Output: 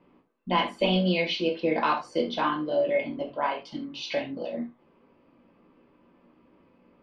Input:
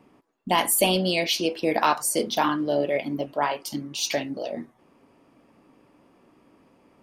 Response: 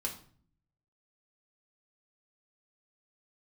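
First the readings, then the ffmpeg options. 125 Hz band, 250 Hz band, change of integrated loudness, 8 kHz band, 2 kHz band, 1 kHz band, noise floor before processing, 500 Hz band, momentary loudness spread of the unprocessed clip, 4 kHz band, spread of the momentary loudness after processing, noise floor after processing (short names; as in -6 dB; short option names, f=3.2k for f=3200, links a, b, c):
+1.0 dB, -1.5 dB, -3.0 dB, under -25 dB, -2.5 dB, -3.0 dB, -61 dBFS, -1.5 dB, 12 LU, -4.5 dB, 11 LU, -63 dBFS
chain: -filter_complex "[0:a]lowpass=f=3.9k:w=0.5412,lowpass=f=3.9k:w=1.3066[a];[1:a]atrim=start_sample=2205,atrim=end_sample=3969[b];[a][b]afir=irnorm=-1:irlink=0,volume=-4.5dB"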